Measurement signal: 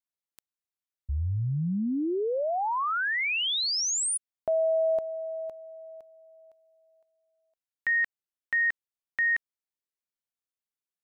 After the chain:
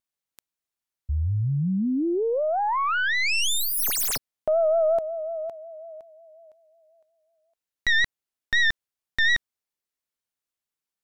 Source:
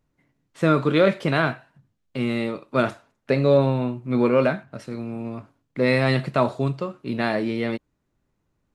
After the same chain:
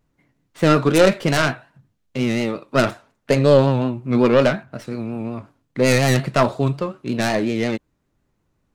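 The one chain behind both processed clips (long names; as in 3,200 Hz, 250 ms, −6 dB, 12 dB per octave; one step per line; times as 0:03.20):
stylus tracing distortion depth 0.18 ms
pitch vibrato 5.5 Hz 68 cents
level +4 dB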